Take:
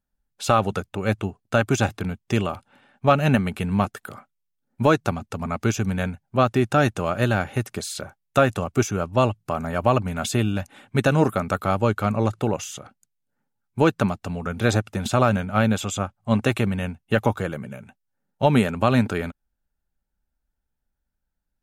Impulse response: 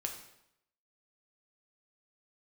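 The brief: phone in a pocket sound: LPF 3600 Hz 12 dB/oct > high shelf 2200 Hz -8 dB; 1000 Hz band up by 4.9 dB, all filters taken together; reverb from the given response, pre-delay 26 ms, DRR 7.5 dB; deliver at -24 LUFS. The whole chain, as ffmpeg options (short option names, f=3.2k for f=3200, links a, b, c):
-filter_complex "[0:a]equalizer=f=1k:t=o:g=8.5,asplit=2[a][b];[1:a]atrim=start_sample=2205,adelay=26[c];[b][c]afir=irnorm=-1:irlink=0,volume=-8dB[d];[a][d]amix=inputs=2:normalize=0,lowpass=3.6k,highshelf=f=2.2k:g=-8,volume=-3dB"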